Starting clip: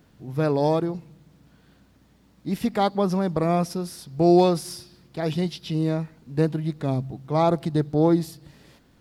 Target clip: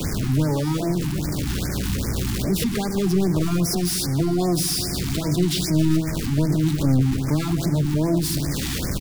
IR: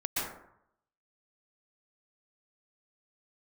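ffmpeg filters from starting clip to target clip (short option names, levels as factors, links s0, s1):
-filter_complex "[0:a]aeval=exprs='val(0)+0.5*0.0708*sgn(val(0))':c=same,equalizer=f=740:w=0.86:g=-10,bandreject=f=163.7:t=h:w=4,bandreject=f=327.4:t=h:w=4,bandreject=f=491.1:t=h:w=4,bandreject=f=654.8:t=h:w=4,acrossover=split=110[s0][s1];[s0]acontrast=39[s2];[s1]alimiter=limit=0.141:level=0:latency=1:release=95[s3];[s2][s3]amix=inputs=2:normalize=0,acrossover=split=270|3000[s4][s5][s6];[s5]acompressor=threshold=0.0178:ratio=2[s7];[s4][s7][s6]amix=inputs=3:normalize=0,aeval=exprs='clip(val(0),-1,0.0944)':c=same,asplit=3[s8][s9][s10];[s9]asetrate=33038,aresample=44100,atempo=1.33484,volume=0.141[s11];[s10]asetrate=88200,aresample=44100,atempo=0.5,volume=0.501[s12];[s8][s11][s12]amix=inputs=3:normalize=0,asplit=2[s13][s14];[1:a]atrim=start_sample=2205,lowpass=9800[s15];[s14][s15]afir=irnorm=-1:irlink=0,volume=0.126[s16];[s13][s16]amix=inputs=2:normalize=0,afftfilt=real='re*(1-between(b*sr/1024,480*pow(3500/480,0.5+0.5*sin(2*PI*2.5*pts/sr))/1.41,480*pow(3500/480,0.5+0.5*sin(2*PI*2.5*pts/sr))*1.41))':imag='im*(1-between(b*sr/1024,480*pow(3500/480,0.5+0.5*sin(2*PI*2.5*pts/sr))/1.41,480*pow(3500/480,0.5+0.5*sin(2*PI*2.5*pts/sr))*1.41))':win_size=1024:overlap=0.75,volume=1.26"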